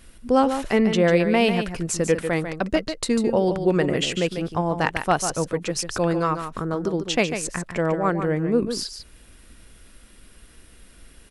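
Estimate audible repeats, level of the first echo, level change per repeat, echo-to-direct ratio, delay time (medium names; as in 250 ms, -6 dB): 1, -8.5 dB, no regular repeats, -8.5 dB, 146 ms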